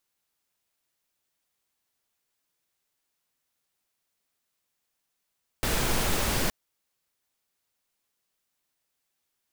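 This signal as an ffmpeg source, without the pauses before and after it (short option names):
-f lavfi -i "anoisesrc=c=pink:a=0.257:d=0.87:r=44100:seed=1"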